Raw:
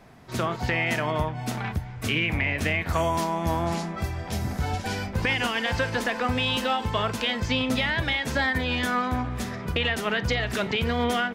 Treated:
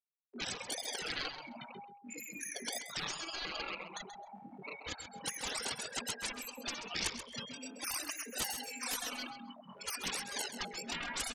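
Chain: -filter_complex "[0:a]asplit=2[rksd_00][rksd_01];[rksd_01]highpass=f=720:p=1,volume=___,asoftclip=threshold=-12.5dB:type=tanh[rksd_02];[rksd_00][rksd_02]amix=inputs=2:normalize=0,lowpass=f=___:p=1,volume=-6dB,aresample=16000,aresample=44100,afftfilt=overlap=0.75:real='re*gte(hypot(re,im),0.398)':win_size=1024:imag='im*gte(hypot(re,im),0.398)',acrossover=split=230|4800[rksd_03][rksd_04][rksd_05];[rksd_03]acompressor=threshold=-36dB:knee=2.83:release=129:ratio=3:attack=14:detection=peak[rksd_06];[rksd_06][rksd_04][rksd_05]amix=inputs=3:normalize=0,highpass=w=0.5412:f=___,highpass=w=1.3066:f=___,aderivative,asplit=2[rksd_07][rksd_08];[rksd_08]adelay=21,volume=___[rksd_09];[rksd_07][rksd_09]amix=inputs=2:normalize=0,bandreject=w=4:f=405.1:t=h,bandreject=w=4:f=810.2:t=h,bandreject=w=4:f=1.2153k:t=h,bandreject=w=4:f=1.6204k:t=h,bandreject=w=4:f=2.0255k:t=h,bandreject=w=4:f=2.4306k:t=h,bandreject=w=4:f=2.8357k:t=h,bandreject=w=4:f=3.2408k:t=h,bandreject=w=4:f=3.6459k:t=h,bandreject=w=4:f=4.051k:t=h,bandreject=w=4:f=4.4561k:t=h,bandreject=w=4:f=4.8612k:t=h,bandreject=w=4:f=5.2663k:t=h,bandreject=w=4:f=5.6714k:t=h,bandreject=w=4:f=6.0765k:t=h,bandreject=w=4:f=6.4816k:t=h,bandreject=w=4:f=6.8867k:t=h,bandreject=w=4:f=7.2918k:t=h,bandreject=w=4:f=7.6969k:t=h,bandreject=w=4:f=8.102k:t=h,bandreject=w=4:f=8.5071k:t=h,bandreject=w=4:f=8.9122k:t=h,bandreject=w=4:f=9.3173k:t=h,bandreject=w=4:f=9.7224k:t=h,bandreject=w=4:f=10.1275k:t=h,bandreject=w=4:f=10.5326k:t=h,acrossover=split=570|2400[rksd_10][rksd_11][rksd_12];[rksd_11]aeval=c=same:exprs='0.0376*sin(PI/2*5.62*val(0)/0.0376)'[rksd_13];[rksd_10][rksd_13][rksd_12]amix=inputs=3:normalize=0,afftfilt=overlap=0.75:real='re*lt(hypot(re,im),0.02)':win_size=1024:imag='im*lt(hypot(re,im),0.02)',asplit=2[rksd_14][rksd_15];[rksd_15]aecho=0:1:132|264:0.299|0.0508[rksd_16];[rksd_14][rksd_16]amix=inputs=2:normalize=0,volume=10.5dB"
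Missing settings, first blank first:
27dB, 1.2k, 150, 150, -3dB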